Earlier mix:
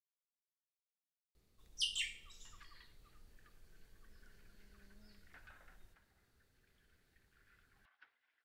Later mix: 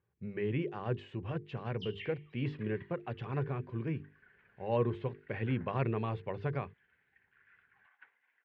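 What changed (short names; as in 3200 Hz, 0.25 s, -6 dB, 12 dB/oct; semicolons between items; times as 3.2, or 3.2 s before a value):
speech: unmuted; second sound +10.0 dB; master: add speaker cabinet 130–2300 Hz, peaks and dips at 200 Hz -4 dB, 300 Hz -10 dB, 640 Hz -9 dB, 1300 Hz -8 dB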